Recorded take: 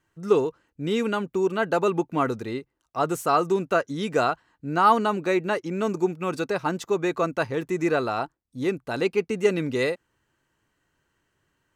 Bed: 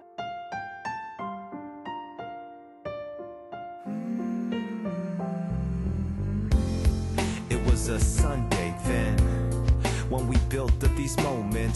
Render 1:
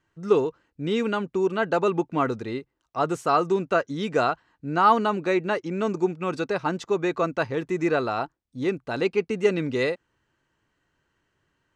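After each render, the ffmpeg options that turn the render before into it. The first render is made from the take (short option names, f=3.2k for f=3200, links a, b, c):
-af "lowpass=6.2k"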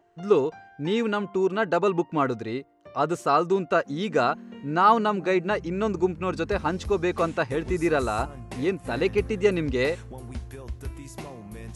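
-filter_complex "[1:a]volume=-12.5dB[a];[0:a][a]amix=inputs=2:normalize=0"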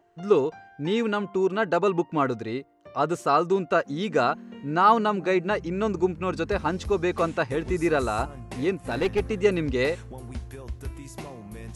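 -filter_complex "[0:a]asettb=1/sr,asplit=3[a][b][c];[a]atrim=end=8.774[d];[b]atrim=start=8.77:end=9.4,asetpts=PTS-STARTPTS,afade=t=in:d=0.004:c=qsin,afade=t=out:st=0.626:d=0.004:c=qsin,aeval=exprs='clip(val(0),-1,0.0944)':c=same[e];[c]atrim=start=9.396[f];[d][e]acrossfade=d=0.004:c1=hsin:c2=qsin[g];[g][f]acrossfade=d=0.004:c1=qsin:c2=hsin"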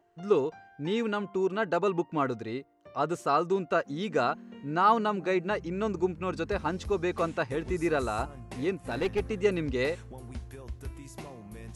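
-af "volume=-4.5dB"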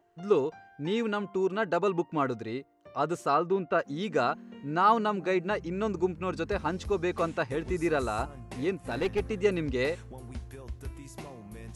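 -filter_complex "[0:a]asettb=1/sr,asplit=3[a][b][c];[a]atrim=end=3.344[d];[b]atrim=start=3.34:end=3.79,asetpts=PTS-STARTPTS,afade=t=in:d=0.004:c=qsin,afade=t=out:st=0.446:d=0.004:c=qsin,lowpass=3.1k[e];[c]atrim=start=3.786[f];[d][e]acrossfade=d=0.004:c1=hsin:c2=qsin[g];[g][f]acrossfade=d=0.004:c1=qsin:c2=hsin"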